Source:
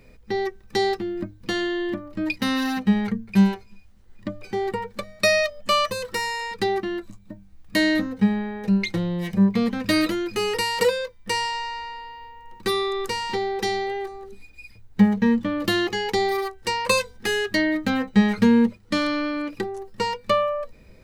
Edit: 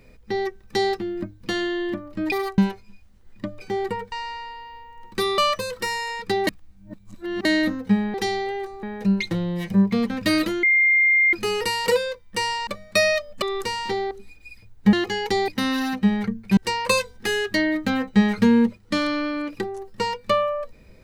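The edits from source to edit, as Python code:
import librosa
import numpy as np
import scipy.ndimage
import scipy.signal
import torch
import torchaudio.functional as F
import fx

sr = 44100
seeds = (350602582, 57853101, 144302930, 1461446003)

y = fx.edit(x, sr, fx.swap(start_s=2.32, length_s=1.09, other_s=16.31, other_length_s=0.26),
    fx.swap(start_s=4.95, length_s=0.75, other_s=11.6, other_length_s=1.26),
    fx.reverse_span(start_s=6.79, length_s=0.98),
    fx.insert_tone(at_s=10.26, length_s=0.7, hz=2110.0, db=-14.0),
    fx.move(start_s=13.55, length_s=0.69, to_s=8.46),
    fx.cut(start_s=15.06, length_s=0.7), tone=tone)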